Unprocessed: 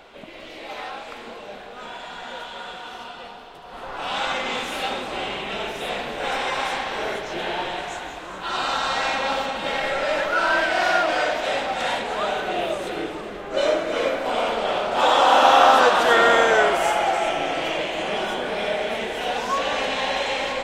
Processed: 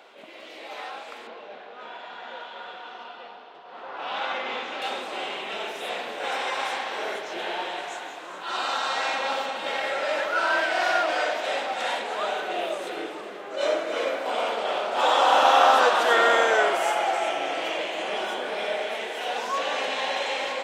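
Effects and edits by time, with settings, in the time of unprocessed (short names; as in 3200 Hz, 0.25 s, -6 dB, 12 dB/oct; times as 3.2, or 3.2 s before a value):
1.27–4.82 Gaussian blur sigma 1.8 samples
18.84–19.32 low shelf 220 Hz -7.5 dB
whole clip: HPF 330 Hz 12 dB/oct; attack slew limiter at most 110 dB/s; gain -3 dB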